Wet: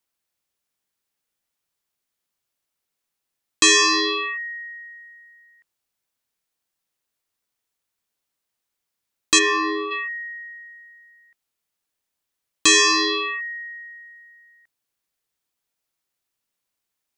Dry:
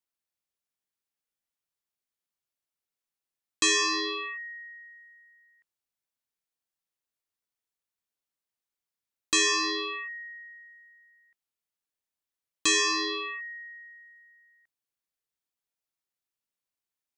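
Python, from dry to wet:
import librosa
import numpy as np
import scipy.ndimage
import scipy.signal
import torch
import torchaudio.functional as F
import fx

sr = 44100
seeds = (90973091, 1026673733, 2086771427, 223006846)

y = fx.lowpass(x, sr, hz=fx.line((9.38, 2400.0), (9.9, 1400.0)), slope=12, at=(9.38, 9.9), fade=0.02)
y = y * librosa.db_to_amplitude(9.0)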